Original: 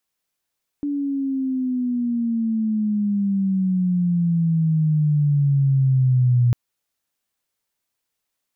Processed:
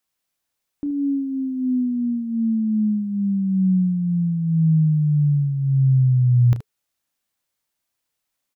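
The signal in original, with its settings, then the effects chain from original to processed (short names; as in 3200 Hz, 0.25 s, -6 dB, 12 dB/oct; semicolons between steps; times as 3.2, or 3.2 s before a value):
chirp logarithmic 290 Hz -> 120 Hz -21 dBFS -> -13 dBFS 5.70 s
notch 430 Hz; on a send: early reflections 32 ms -11.5 dB, 75 ms -13 dB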